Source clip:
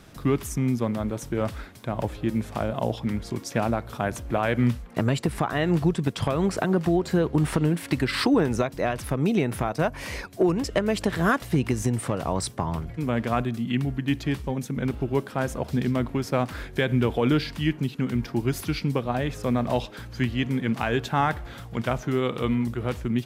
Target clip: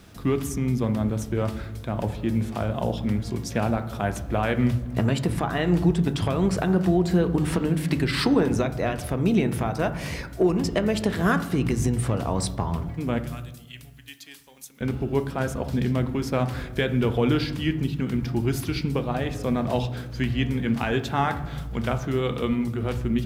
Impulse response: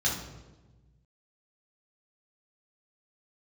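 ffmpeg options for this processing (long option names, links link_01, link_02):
-filter_complex "[0:a]asettb=1/sr,asplit=3[link_01][link_02][link_03];[link_01]atrim=end=13.184[link_04];[link_02]atrim=start=13.18:end=14.81,asetpts=PTS-STARTPTS,afade=type=in:duration=0.004:curve=qsin,afade=type=out:start_time=1.626:duration=0.004:curve=qsin,aderivative[link_05];[link_03]atrim=start=14.806[link_06];[link_04][link_05]acrossfade=duration=0.004:curve1=hsin:curve2=qsin[link_07];[link_07][link_06]acrossfade=duration=0.004:curve1=qsin:curve2=hsin,acrusher=bits=10:mix=0:aa=0.000001,asplit=2[link_08][link_09];[1:a]atrim=start_sample=2205,lowpass=3300[link_10];[link_09][link_10]afir=irnorm=-1:irlink=0,volume=-17dB[link_11];[link_08][link_11]amix=inputs=2:normalize=0"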